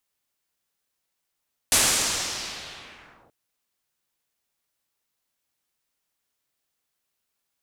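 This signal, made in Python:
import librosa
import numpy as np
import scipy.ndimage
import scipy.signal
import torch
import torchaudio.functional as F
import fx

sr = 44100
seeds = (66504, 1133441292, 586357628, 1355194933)

y = fx.riser_noise(sr, seeds[0], length_s=1.58, colour='white', kind='lowpass', start_hz=9300.0, end_hz=540.0, q=1.4, swell_db=-32.0, law='linear')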